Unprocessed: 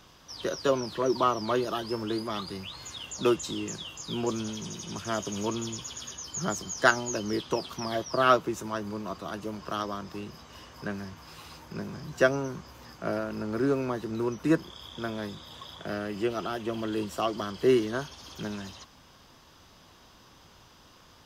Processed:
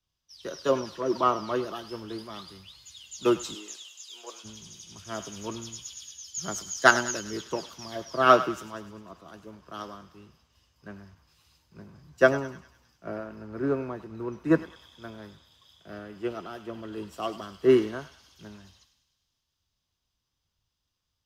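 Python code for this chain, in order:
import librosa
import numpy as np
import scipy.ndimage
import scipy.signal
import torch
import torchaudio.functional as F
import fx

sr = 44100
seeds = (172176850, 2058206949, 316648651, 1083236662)

y = fx.highpass(x, sr, hz=fx.line((3.54, 260.0), (4.43, 540.0)), slope=24, at=(3.54, 4.43), fade=0.02)
y = fx.echo_thinned(y, sr, ms=101, feedback_pct=84, hz=1100.0, wet_db=-10.5)
y = fx.band_widen(y, sr, depth_pct=100)
y = y * librosa.db_to_amplitude(-5.0)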